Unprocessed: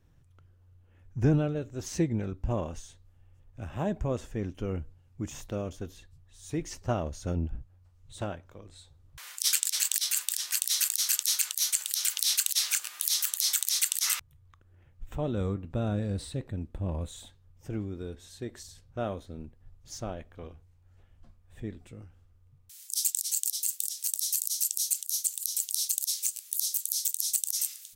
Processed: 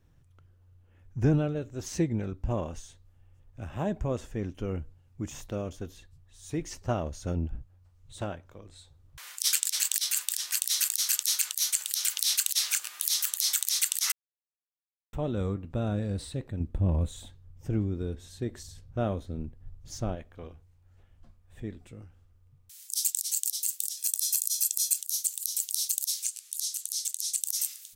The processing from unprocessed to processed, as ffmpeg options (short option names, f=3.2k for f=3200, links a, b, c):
-filter_complex "[0:a]asettb=1/sr,asplit=3[a][b][c];[a]atrim=end=16.604[d];[b]atrim=start=16.6:end=20.15,asetpts=PTS-STARTPTS,afade=t=in:d=0.004:c=qsin,afade=t=out:st=3.546:d=0.004:c=qsin,lowshelf=f=330:g=8[e];[c]atrim=start=20.146[f];[d][e]acrossfade=d=0.004:c1=hsin:c2=qsin[g];[g][f]acrossfade=d=0.004:c1=qsin:c2=hsin,asettb=1/sr,asplit=3[h][i][j];[h]atrim=end=23.974[k];[i]atrim=start=23.97:end=24.99,asetpts=PTS-STARTPTS,afade=t=in:d=0.004:c=qsin,afade=t=out:st=1.016:d=0.004:c=qsin,aecho=1:1:1.2:0.71,atrim=end_sample=44982[l];[j]atrim=start=24.986[m];[k][l]acrossfade=d=0.004:c1=hsin:c2=qsin[n];[n][m]acrossfade=d=0.004:c1=qsin:c2=hsin,asettb=1/sr,asplit=3[o][p][q];[o]atrim=end=26.234[r];[p]atrim=start=26.23:end=27.41,asetpts=PTS-STARTPTS,afade=t=in:d=0.004:c=qsin,afade=t=out:st=1.176:d=0.004:c=qsin,lowpass=10k[s];[q]atrim=start=27.406[t];[r][s]acrossfade=d=0.004:c1=hsin:c2=qsin[u];[u][t]acrossfade=d=0.004:c1=qsin:c2=hsin,asplit=3[v][w][x];[v]atrim=end=14.12,asetpts=PTS-STARTPTS,afade=t=out:st=14.116:d=0.004:c=hsin[y];[w]atrim=start=14.12:end=15.13,asetpts=PTS-STARTPTS,volume=0[z];[x]atrim=start=15.13,asetpts=PTS-STARTPTS,afade=t=in:d=0.004:c=hsin[aa];[y][z][aa]concat=n=3:v=0:a=1"